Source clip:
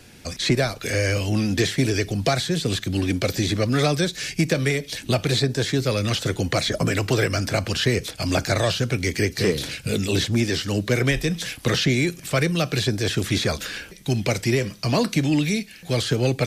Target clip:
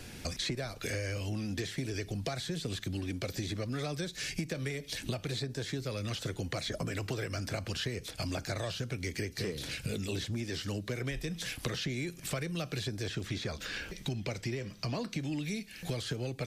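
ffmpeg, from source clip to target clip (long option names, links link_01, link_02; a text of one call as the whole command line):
ffmpeg -i in.wav -filter_complex "[0:a]lowshelf=frequency=61:gain=6.5,acompressor=threshold=-34dB:ratio=6,asettb=1/sr,asplit=3[link_01][link_02][link_03];[link_01]atrim=end=13.074[link_04];[link_02]atrim=start=13.07:end=15.2,asetpts=PTS-STARTPTS,afade=type=in:duration=0.004:curve=qsin,afade=type=out:start_time=2.126:duration=0.004:curve=qsin,equalizer=frequency=11000:width_type=o:width=0.8:gain=-9.5[link_05];[link_03]atrim=start=15.196[link_06];[link_04][link_05]acrossfade=duration=0.004:curve1=hsin:curve2=qsin[link_07];[link_07][link_06]acrossfade=duration=0.004:curve1=qsin:curve2=hsin" out.wav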